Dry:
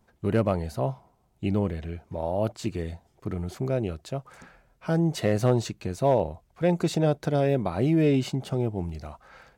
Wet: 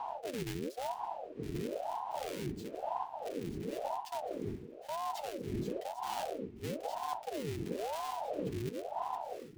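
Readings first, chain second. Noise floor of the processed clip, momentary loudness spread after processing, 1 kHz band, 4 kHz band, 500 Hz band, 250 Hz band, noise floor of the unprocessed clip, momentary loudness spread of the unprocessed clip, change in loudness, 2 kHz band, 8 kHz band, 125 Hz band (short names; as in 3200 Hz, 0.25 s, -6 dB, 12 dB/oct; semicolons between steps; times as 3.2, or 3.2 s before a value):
-50 dBFS, 3 LU, -2.5 dB, -7.5 dB, -12.5 dB, -15.0 dB, -66 dBFS, 13 LU, -12.5 dB, -11.0 dB, -7.5 dB, -18.0 dB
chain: half-waves squared off; wind noise 300 Hz -19 dBFS; EQ curve 170 Hz 0 dB, 280 Hz -23 dB, 1400 Hz -14 dB, 2000 Hz -2 dB; reverse; compressor 16:1, threshold -28 dBFS, peak gain reduction 22.5 dB; reverse; ring modulator with a swept carrier 560 Hz, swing 60%, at 0.99 Hz; gain -4 dB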